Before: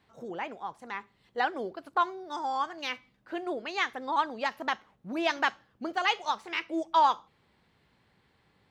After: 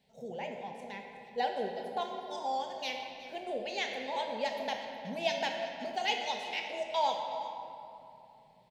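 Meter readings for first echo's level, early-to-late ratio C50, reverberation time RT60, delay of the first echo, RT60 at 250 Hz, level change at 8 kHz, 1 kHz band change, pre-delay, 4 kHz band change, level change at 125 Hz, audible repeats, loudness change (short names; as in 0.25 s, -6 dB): -16.5 dB, 3.0 dB, 2.9 s, 0.368 s, 3.0 s, +0.5 dB, -6.0 dB, 15 ms, -0.5 dB, n/a, 1, -4.5 dB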